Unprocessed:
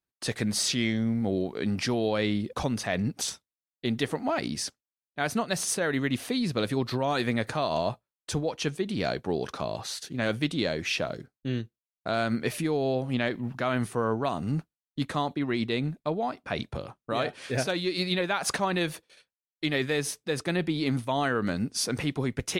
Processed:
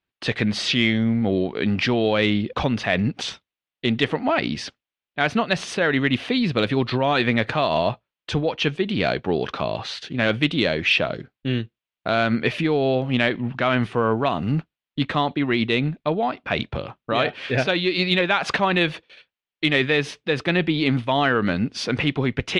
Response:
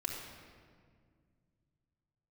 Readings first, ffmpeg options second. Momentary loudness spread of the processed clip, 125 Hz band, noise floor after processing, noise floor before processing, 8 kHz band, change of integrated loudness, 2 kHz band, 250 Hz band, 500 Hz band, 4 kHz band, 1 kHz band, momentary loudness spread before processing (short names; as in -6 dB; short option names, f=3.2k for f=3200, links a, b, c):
8 LU, +6.5 dB, under -85 dBFS, under -85 dBFS, -7.0 dB, +7.0 dB, +10.0 dB, +6.5 dB, +6.5 dB, +8.0 dB, +7.0 dB, 7 LU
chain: -af "lowpass=f=3k:t=q:w=1.9,acontrast=66"